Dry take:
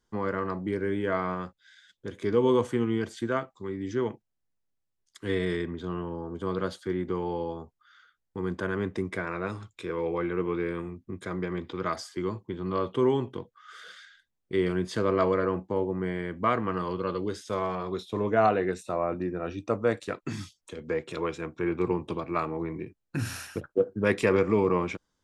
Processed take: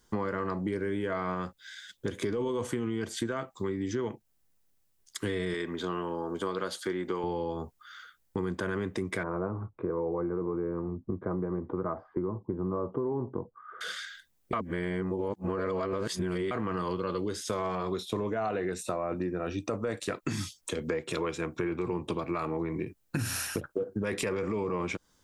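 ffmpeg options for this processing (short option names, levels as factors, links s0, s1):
-filter_complex "[0:a]asettb=1/sr,asplit=3[s0][s1][s2];[s0]atrim=end=5.544[s3];[s1]atrim=start=5.54:end=7.24,asetpts=PTS-STARTPTS,afade=t=in:d=0.004:c=qsin,afade=t=out:st=1.696:d=0.004:c=qsin,highpass=f=470:p=1[s4];[s2]atrim=start=7.236[s5];[s3][s4]acrossfade=d=0.004:c1=hsin:c2=qsin[s6];[s6][s5]acrossfade=d=0.004:c1=qsin:c2=hsin,asettb=1/sr,asplit=3[s7][s8][s9];[s7]atrim=end=9.234[s10];[s8]atrim=start=9.23:end=13.81,asetpts=PTS-STARTPTS,afade=t=in:d=0.004:c=qsin,afade=t=out:st=4.576:d=0.004:c=qsin,lowpass=f=1100:w=0.5412,lowpass=f=1100:w=1.3066[s11];[s9]atrim=start=13.806[s12];[s10][s11]acrossfade=d=0.004:c1=hsin:c2=qsin[s13];[s13][s12]acrossfade=d=0.004:c1=qsin:c2=hsin,asplit=3[s14][s15][s16];[s14]atrim=end=14.532[s17];[s15]atrim=start=14.528:end=16.512,asetpts=PTS-STARTPTS,areverse[s18];[s16]atrim=start=16.508[s19];[s17][s18]acrossfade=d=0.004:c1=hsin:c2=hsin[s20];[s20][s19]acrossfade=d=0.004:c1=hsin:c2=hsin,highshelf=f=7700:g=10,alimiter=limit=0.0841:level=0:latency=1:release=10,acompressor=threshold=0.0126:ratio=6,volume=2.82"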